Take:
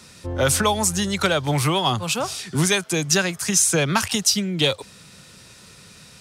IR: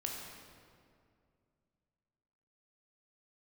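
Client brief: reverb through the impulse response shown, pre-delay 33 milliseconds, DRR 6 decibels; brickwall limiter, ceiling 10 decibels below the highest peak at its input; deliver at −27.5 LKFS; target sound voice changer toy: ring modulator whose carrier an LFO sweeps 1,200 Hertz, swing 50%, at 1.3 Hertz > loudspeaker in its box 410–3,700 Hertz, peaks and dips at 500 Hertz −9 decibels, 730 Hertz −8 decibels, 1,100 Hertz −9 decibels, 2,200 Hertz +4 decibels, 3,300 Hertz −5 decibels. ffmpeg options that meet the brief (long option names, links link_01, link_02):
-filter_complex "[0:a]alimiter=limit=-16dB:level=0:latency=1,asplit=2[link_01][link_02];[1:a]atrim=start_sample=2205,adelay=33[link_03];[link_02][link_03]afir=irnorm=-1:irlink=0,volume=-7dB[link_04];[link_01][link_04]amix=inputs=2:normalize=0,aeval=exprs='val(0)*sin(2*PI*1200*n/s+1200*0.5/1.3*sin(2*PI*1.3*n/s))':channel_layout=same,highpass=410,equalizer=frequency=500:width_type=q:width=4:gain=-9,equalizer=frequency=730:width_type=q:width=4:gain=-8,equalizer=frequency=1100:width_type=q:width=4:gain=-9,equalizer=frequency=2200:width_type=q:width=4:gain=4,equalizer=frequency=3300:width_type=q:width=4:gain=-5,lowpass=frequency=3700:width=0.5412,lowpass=frequency=3700:width=1.3066,volume=1.5dB"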